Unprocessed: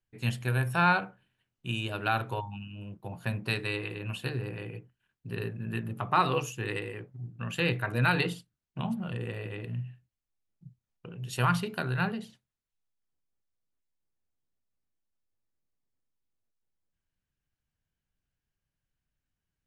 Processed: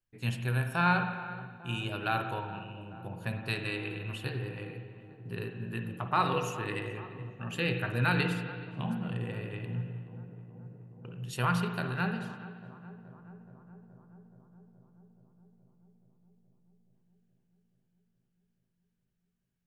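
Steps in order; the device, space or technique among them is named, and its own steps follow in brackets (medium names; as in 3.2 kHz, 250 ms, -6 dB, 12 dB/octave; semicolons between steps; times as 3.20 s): dub delay into a spring reverb (filtered feedback delay 424 ms, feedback 78%, low-pass 1.4 kHz, level -15.5 dB; spring tank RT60 1.5 s, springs 51/57 ms, chirp 40 ms, DRR 6 dB); 7.35–7.92 s: band-stop 1 kHz, Q 7; trim -3 dB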